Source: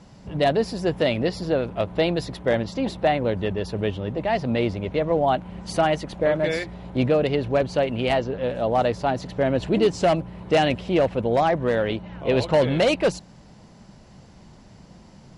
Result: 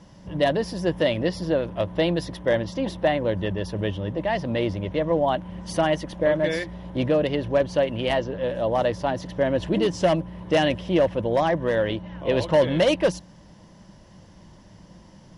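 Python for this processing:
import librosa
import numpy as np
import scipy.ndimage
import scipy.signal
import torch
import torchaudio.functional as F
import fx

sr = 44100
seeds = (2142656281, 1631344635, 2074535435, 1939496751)

y = fx.ripple_eq(x, sr, per_octave=1.2, db=6)
y = y * 10.0 ** (-1.5 / 20.0)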